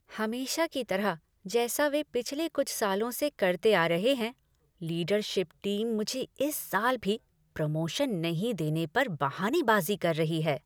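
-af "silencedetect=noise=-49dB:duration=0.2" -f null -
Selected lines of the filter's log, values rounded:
silence_start: 1.17
silence_end: 1.45 | silence_duration: 0.28
silence_start: 4.32
silence_end: 4.81 | silence_duration: 0.49
silence_start: 7.17
silence_end: 7.56 | silence_duration: 0.39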